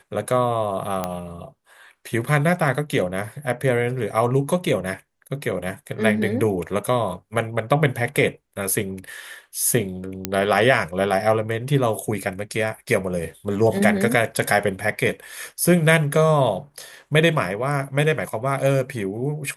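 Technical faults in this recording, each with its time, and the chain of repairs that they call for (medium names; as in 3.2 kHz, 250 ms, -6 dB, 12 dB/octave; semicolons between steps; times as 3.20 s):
1.04 s: pop -10 dBFS
10.25 s: pop -5 dBFS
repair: de-click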